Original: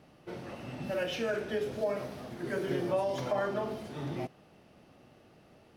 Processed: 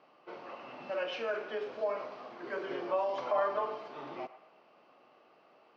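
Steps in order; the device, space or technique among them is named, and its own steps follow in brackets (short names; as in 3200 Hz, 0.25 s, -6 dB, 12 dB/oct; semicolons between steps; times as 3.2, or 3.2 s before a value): 3.33–3.88 comb 6.7 ms, depth 58%; phone earpiece (speaker cabinet 490–4300 Hz, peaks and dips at 1100 Hz +7 dB, 1800 Hz -5 dB, 3600 Hz -7 dB); band-limited delay 0.111 s, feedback 46%, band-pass 1200 Hz, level -13.5 dB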